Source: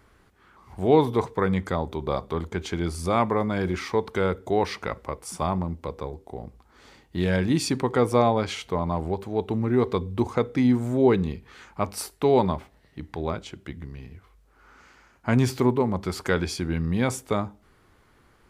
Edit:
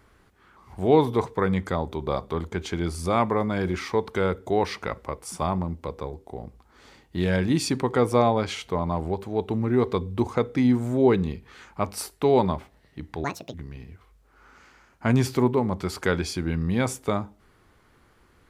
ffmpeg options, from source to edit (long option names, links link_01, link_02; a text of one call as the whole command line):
ffmpeg -i in.wav -filter_complex "[0:a]asplit=3[link_01][link_02][link_03];[link_01]atrim=end=13.244[link_04];[link_02]atrim=start=13.24:end=13.77,asetpts=PTS-STARTPTS,asetrate=77616,aresample=44100,atrim=end_sample=13280,asetpts=PTS-STARTPTS[link_05];[link_03]atrim=start=13.766[link_06];[link_04][link_05]acrossfade=duration=0.004:curve1=hsin:curve2=hsin[link_07];[link_07][link_06]acrossfade=duration=0.004:curve1=hsin:curve2=hsin" out.wav